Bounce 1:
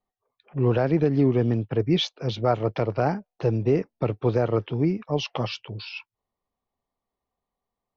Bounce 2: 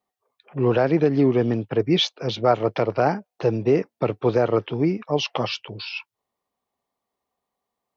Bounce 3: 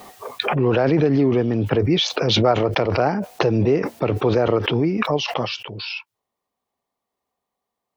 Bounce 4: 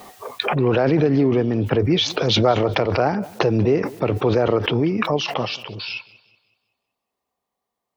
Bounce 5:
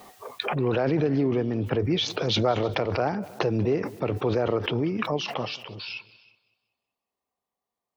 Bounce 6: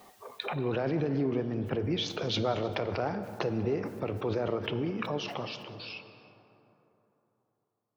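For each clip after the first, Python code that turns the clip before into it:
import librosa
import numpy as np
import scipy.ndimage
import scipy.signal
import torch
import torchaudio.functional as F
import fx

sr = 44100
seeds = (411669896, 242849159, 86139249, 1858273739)

y1 = fx.highpass(x, sr, hz=260.0, slope=6)
y1 = F.gain(torch.from_numpy(y1), 5.0).numpy()
y2 = fx.pre_swell(y1, sr, db_per_s=21.0)
y3 = fx.echo_warbled(y2, sr, ms=188, feedback_pct=39, rate_hz=2.8, cents=50, wet_db=-21)
y4 = y3 + 10.0 ** (-22.5 / 20.0) * np.pad(y3, (int(314 * sr / 1000.0), 0))[:len(y3)]
y4 = F.gain(torch.from_numpy(y4), -6.5).numpy()
y5 = fx.rev_plate(y4, sr, seeds[0], rt60_s=3.5, hf_ratio=0.4, predelay_ms=0, drr_db=10.0)
y5 = F.gain(torch.from_numpy(y5), -6.5).numpy()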